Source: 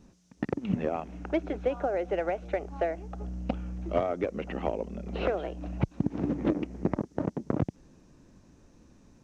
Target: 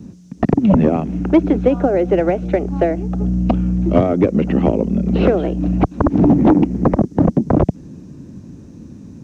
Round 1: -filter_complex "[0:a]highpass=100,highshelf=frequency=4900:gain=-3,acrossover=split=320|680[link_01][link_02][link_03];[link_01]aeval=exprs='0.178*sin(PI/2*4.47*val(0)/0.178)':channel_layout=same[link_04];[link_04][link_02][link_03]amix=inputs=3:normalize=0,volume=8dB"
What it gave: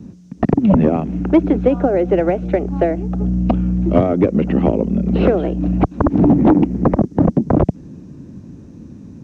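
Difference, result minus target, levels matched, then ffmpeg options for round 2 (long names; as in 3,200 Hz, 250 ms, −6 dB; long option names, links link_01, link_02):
8,000 Hz band −4.5 dB
-filter_complex "[0:a]highpass=100,highshelf=frequency=4900:gain=4,acrossover=split=320|680[link_01][link_02][link_03];[link_01]aeval=exprs='0.178*sin(PI/2*4.47*val(0)/0.178)':channel_layout=same[link_04];[link_04][link_02][link_03]amix=inputs=3:normalize=0,volume=8dB"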